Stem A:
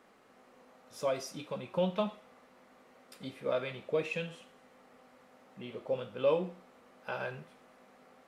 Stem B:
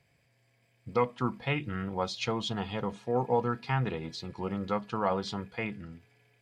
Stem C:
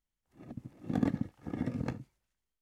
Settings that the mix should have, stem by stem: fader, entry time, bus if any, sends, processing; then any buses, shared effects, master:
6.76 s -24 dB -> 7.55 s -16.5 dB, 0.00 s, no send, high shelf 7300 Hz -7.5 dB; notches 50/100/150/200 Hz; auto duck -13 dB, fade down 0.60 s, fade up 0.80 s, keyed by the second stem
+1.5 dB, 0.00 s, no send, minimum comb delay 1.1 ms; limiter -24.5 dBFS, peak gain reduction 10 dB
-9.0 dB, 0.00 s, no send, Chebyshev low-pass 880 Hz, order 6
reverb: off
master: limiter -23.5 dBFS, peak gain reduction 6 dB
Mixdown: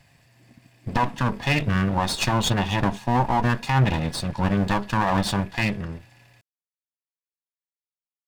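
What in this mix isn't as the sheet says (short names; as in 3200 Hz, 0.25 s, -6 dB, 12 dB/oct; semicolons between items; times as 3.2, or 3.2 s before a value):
stem A: muted; stem B +1.5 dB -> +13.0 dB; master: missing limiter -23.5 dBFS, peak gain reduction 6 dB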